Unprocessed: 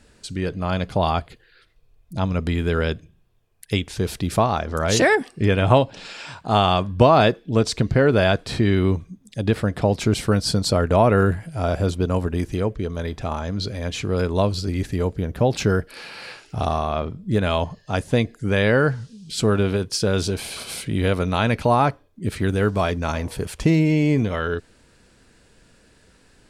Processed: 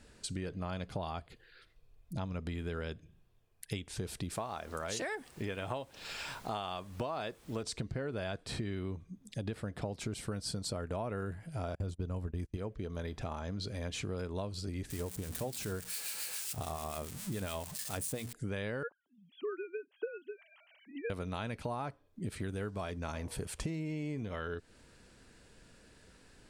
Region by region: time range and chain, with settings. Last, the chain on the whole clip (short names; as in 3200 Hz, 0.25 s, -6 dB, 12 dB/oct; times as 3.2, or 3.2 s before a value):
4.29–7.62 low shelf 270 Hz -9 dB + added noise pink -49 dBFS
11.75–12.57 gate -28 dBFS, range -31 dB + low shelf 140 Hz +11.5 dB
14.9–18.33 switching spikes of -17 dBFS + notches 60/120/180/240 Hz + harmonic tremolo 7.1 Hz, depth 50%, crossover 1300 Hz
18.83–21.1 sine-wave speech + HPF 390 Hz 6 dB/oct + upward expander 2.5:1, over -29 dBFS
whole clip: dynamic EQ 8600 Hz, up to +6 dB, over -52 dBFS, Q 2.4; compressor 6:1, threshold -31 dBFS; gain -5 dB